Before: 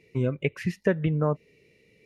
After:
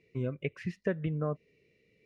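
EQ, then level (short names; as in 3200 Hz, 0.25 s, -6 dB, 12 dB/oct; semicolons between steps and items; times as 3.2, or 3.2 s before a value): Butterworth band-stop 870 Hz, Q 6; air absorption 66 m; -7.5 dB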